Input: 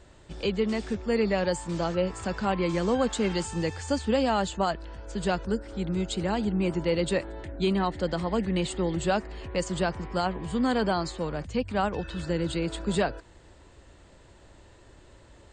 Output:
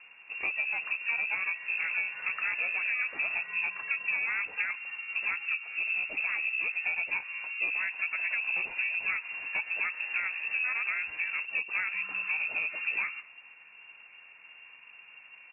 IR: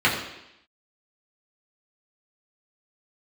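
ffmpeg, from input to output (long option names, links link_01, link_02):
-filter_complex "[0:a]asplit=2[link_01][link_02];[1:a]atrim=start_sample=2205,afade=type=out:start_time=0.2:duration=0.01,atrim=end_sample=9261,asetrate=29988,aresample=44100[link_03];[link_02][link_03]afir=irnorm=-1:irlink=0,volume=-39.5dB[link_04];[link_01][link_04]amix=inputs=2:normalize=0,asplit=4[link_05][link_06][link_07][link_08];[link_06]asetrate=29433,aresample=44100,atempo=1.49831,volume=-5dB[link_09];[link_07]asetrate=33038,aresample=44100,atempo=1.33484,volume=-15dB[link_10];[link_08]asetrate=88200,aresample=44100,atempo=0.5,volume=-17dB[link_11];[link_05][link_09][link_10][link_11]amix=inputs=4:normalize=0,acompressor=threshold=-27dB:ratio=6,lowpass=frequency=2400:width_type=q:width=0.5098,lowpass=frequency=2400:width_type=q:width=0.6013,lowpass=frequency=2400:width_type=q:width=0.9,lowpass=frequency=2400:width_type=q:width=2.563,afreqshift=-2800,lowshelf=frequency=150:gain=-7.5,volume=-1dB"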